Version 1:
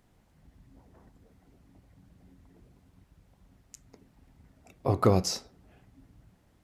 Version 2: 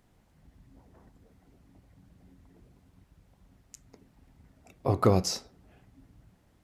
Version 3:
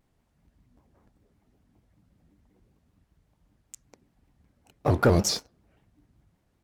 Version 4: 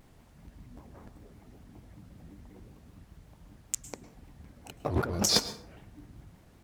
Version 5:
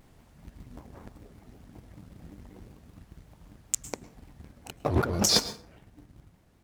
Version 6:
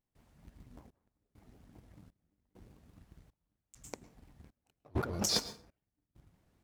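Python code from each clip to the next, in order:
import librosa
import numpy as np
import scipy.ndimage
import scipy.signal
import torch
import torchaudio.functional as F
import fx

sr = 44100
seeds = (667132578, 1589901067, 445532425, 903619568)

y1 = x
y2 = fx.leveller(y1, sr, passes=2)
y2 = fx.vibrato_shape(y2, sr, shape='square', rate_hz=5.2, depth_cents=160.0)
y2 = F.gain(torch.from_numpy(y2), -2.5).numpy()
y3 = fx.over_compress(y2, sr, threshold_db=-33.0, ratio=-1.0)
y3 = fx.rev_plate(y3, sr, seeds[0], rt60_s=0.55, hf_ratio=0.65, predelay_ms=95, drr_db=14.0)
y3 = F.gain(torch.from_numpy(y3), 4.0).numpy()
y4 = fx.leveller(y3, sr, passes=1)
y4 = fx.rider(y4, sr, range_db=10, speed_s=2.0)
y4 = F.gain(torch.from_numpy(y4), 1.0).numpy()
y5 = fx.step_gate(y4, sr, bpm=100, pattern='.xxxxx..', floor_db=-24.0, edge_ms=4.5)
y5 = F.gain(torch.from_numpy(y5), -8.5).numpy()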